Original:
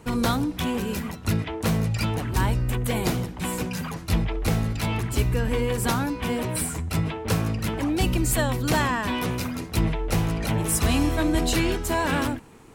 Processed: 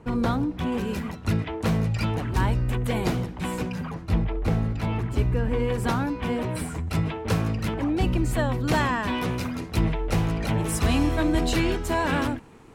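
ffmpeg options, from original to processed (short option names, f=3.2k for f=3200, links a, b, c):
-af "asetnsamples=n=441:p=0,asendcmd='0.72 lowpass f 3300;3.72 lowpass f 1300;5.6 lowpass f 2300;6.87 lowpass f 4300;7.74 lowpass f 1800;8.69 lowpass f 4300',lowpass=f=1.3k:p=1"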